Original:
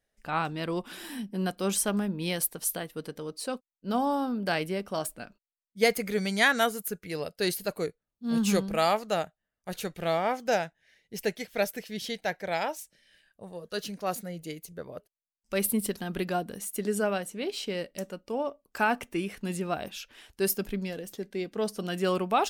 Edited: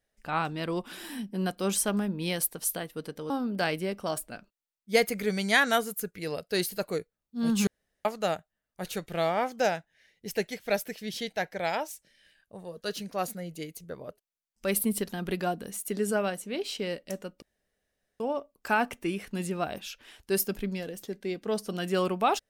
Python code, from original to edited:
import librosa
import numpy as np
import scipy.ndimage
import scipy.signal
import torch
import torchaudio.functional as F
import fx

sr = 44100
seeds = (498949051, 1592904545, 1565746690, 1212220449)

y = fx.edit(x, sr, fx.cut(start_s=3.3, length_s=0.88),
    fx.room_tone_fill(start_s=8.55, length_s=0.38),
    fx.insert_room_tone(at_s=18.3, length_s=0.78), tone=tone)